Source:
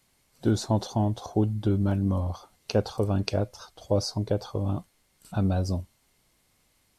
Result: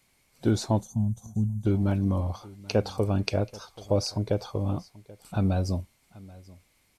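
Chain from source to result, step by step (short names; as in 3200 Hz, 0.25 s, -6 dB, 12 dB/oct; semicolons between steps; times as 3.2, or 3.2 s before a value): on a send: echo 0.783 s -21.5 dB; on the sum: spectral gain 0.81–1.66, 250–5900 Hz -21 dB; bell 2300 Hz +7.5 dB 0.24 oct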